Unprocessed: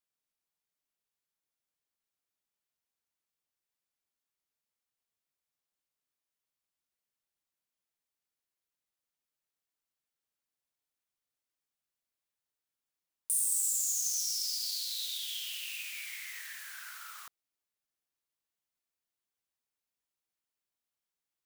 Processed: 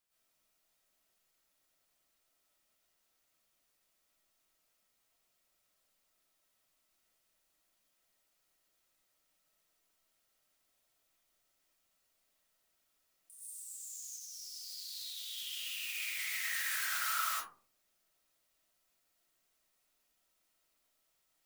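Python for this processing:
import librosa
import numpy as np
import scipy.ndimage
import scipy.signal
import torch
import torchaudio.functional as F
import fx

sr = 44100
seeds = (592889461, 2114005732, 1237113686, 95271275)

y = fx.high_shelf(x, sr, hz=6000.0, db=-5.5, at=(13.31, 14.06))
y = fx.over_compress(y, sr, threshold_db=-47.0, ratio=-1.0)
y = fx.rev_freeverb(y, sr, rt60_s=0.45, hf_ratio=0.35, predelay_ms=80, drr_db=-8.0)
y = y * 10.0 ** (-3.0 / 20.0)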